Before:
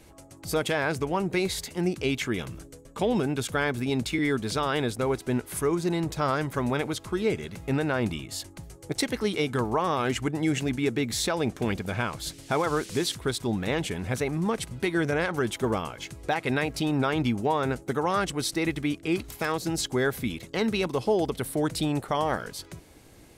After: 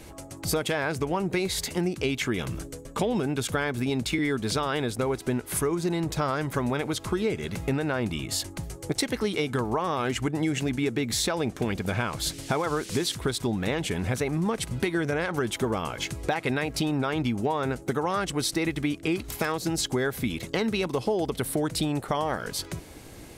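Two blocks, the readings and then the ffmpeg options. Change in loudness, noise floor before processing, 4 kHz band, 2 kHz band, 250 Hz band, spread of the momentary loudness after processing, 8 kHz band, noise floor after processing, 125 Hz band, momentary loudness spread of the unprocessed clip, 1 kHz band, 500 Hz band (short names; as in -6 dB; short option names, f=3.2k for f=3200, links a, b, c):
0.0 dB, -51 dBFS, +1.5 dB, -0.5 dB, 0.0 dB, 3 LU, +2.5 dB, -44 dBFS, +0.5 dB, 5 LU, -1.0 dB, -0.5 dB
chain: -af "acompressor=threshold=-32dB:ratio=4,volume=7.5dB"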